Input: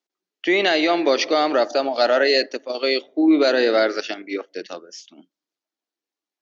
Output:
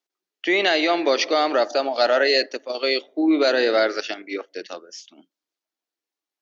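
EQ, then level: bass shelf 190 Hz -11.5 dB; 0.0 dB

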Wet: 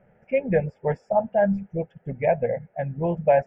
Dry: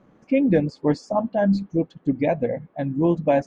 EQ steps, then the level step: dynamic bell 980 Hz, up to +5 dB, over -37 dBFS, Q 2.8; Savitzky-Golay filter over 25 samples; static phaser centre 1.1 kHz, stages 6; +1.5 dB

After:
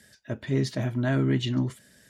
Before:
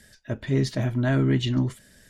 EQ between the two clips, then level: high-pass 94 Hz; -2.0 dB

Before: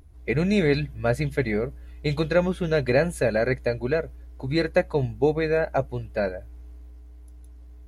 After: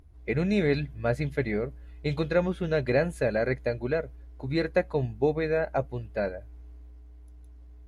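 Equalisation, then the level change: treble shelf 6.2 kHz -8.5 dB; -3.5 dB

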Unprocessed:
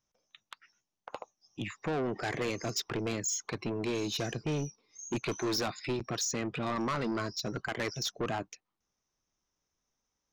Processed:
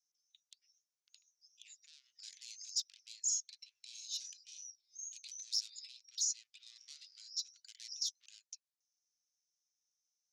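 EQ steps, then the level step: inverse Chebyshev high-pass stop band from 860 Hz, stop band 80 dB; distance through air 74 m; +5.0 dB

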